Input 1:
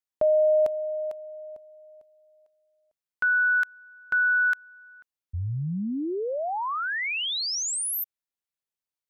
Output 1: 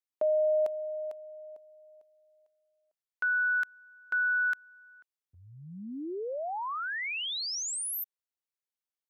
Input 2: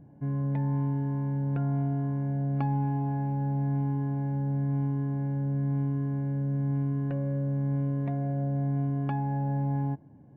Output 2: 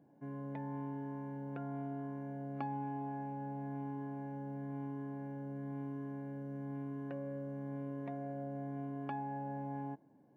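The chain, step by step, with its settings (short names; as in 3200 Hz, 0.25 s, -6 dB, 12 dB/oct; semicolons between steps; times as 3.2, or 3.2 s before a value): HPF 290 Hz 12 dB/oct; gain -5.5 dB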